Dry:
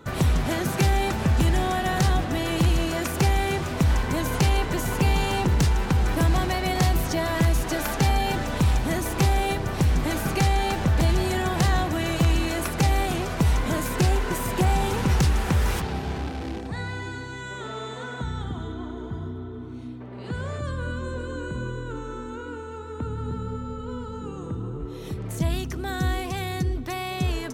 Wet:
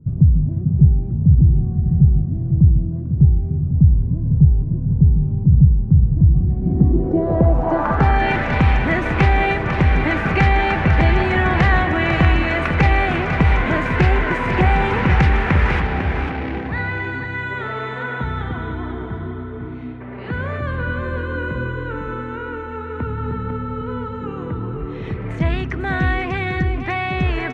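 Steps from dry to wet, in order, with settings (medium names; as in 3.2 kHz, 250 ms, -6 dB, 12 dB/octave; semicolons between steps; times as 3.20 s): delay 499 ms -8.5 dB; low-pass sweep 140 Hz -> 2.1 kHz, 6.39–8.32 s; trim +5.5 dB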